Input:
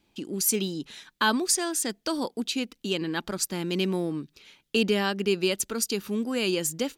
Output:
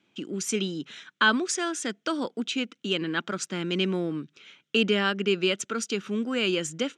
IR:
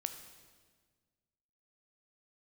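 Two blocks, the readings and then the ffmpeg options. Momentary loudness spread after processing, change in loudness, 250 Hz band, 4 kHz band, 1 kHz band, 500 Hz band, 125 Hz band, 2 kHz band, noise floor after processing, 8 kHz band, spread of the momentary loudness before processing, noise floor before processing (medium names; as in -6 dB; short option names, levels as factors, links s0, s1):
9 LU, 0.0 dB, 0.0 dB, +1.5 dB, +0.5 dB, 0.0 dB, 0.0 dB, +4.0 dB, -75 dBFS, -5.5 dB, 8 LU, -72 dBFS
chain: -af "highpass=f=120:w=0.5412,highpass=f=120:w=1.3066,equalizer=f=860:t=q:w=4:g=-5,equalizer=f=1400:t=q:w=4:g=8,equalizer=f=2200:t=q:w=4:g=3,equalizer=f=3100:t=q:w=4:g=4,equalizer=f=4600:t=q:w=4:g=-9,lowpass=f=7000:w=0.5412,lowpass=f=7000:w=1.3066"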